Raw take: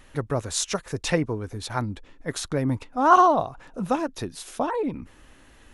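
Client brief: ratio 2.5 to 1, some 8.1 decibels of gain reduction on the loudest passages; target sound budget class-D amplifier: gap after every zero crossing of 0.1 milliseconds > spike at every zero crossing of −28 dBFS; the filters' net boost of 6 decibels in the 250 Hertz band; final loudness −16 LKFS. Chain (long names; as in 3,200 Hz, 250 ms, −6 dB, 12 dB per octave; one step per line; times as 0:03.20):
parametric band 250 Hz +7.5 dB
downward compressor 2.5 to 1, threshold −23 dBFS
gap after every zero crossing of 0.1 ms
spike at every zero crossing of −28 dBFS
level +12 dB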